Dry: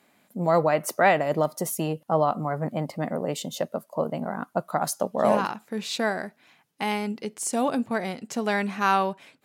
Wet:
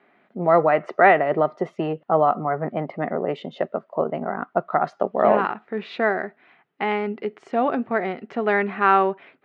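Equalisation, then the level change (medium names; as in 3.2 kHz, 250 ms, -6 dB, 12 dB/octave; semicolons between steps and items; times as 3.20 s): cabinet simulation 130–3000 Hz, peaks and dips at 390 Hz +10 dB, 710 Hz +6 dB, 1.3 kHz +7 dB, 1.9 kHz +6 dB; 0.0 dB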